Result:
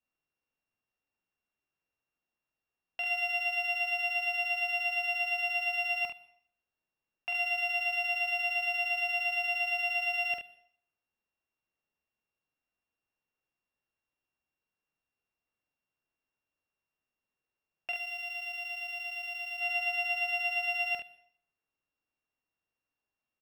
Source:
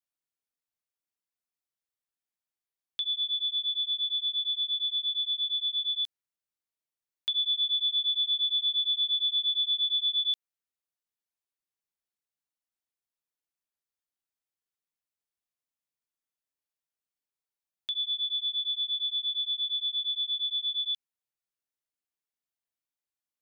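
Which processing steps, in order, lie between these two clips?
samples sorted by size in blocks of 16 samples
0:17.92–0:19.60: high-shelf EQ 3,200 Hz +9.5 dB
brickwall limiter −29.5 dBFS, peak gain reduction 16 dB
high-frequency loss of the air 370 metres
on a send: ambience of single reflections 45 ms −4 dB, 72 ms −7.5 dB
on the sum: dense smooth reverb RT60 0.61 s, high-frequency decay 0.95×, pre-delay 100 ms, DRR 19.5 dB
level +7.5 dB

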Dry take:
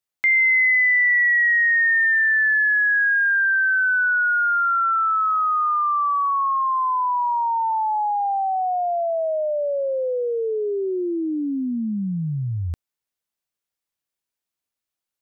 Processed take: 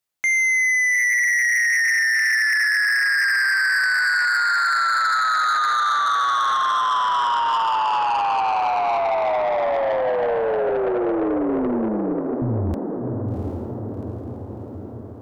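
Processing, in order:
0:10.69–0:12.42: Butterworth high-pass 210 Hz 48 dB per octave
feedback delay with all-pass diffusion 741 ms, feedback 59%, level −4 dB
soft clipping −21 dBFS, distortion −9 dB
level +4 dB

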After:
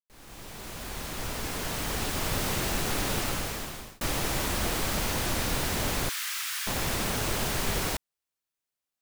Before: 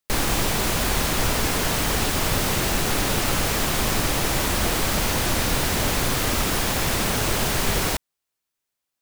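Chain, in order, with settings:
fade in at the beginning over 2.46 s
0:03.18–0:04.01: fade out
0:06.09–0:06.67: high-pass filter 1,400 Hz 24 dB per octave
level −6.5 dB

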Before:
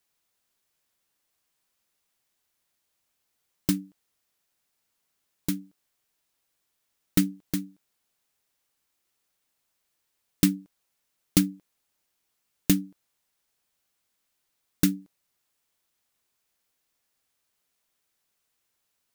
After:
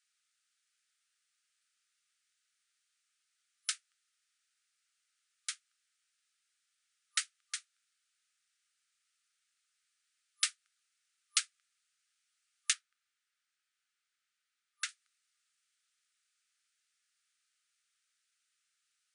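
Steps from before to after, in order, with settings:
0:12.73–0:14.89: high-shelf EQ 3,900 Hz −10 dB
brick-wall band-pass 1,200–10,000 Hz

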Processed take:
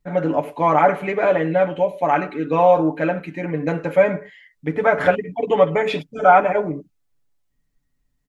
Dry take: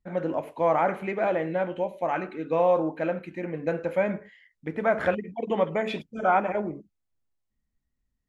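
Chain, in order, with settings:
comb filter 6.9 ms, depth 74%
level +6.5 dB

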